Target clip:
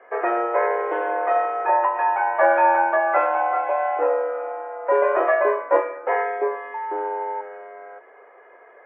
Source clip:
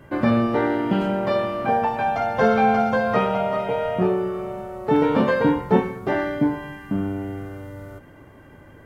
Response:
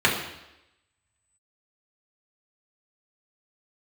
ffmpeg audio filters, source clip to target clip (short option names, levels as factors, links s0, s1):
-filter_complex "[0:a]asettb=1/sr,asplit=3[s0][s1][s2];[s0]atrim=end=6.744[s3];[s1]atrim=start=6.74:end=7.41,asetpts=PTS-STARTPTS,afade=t=in:d=0.004:c=qsin,afade=t=out:st=0.666:d=0.004:c=qsin,aeval=exprs='val(0)+0.0398*sin(2*PI*770*n/s)':c=same[s4];[s2]atrim=start=7.406[s5];[s3][s4]acrossfade=d=0.004:c1=hsin:c2=qsin[s6];[s6][s5]acrossfade=d=0.004:c1=qsin:c2=hsin,highpass=f=330:t=q:w=0.5412,highpass=f=330:t=q:w=1.307,lowpass=f=2100:t=q:w=0.5176,lowpass=f=2100:t=q:w=0.7071,lowpass=f=2100:t=q:w=1.932,afreqshift=120,volume=1.26"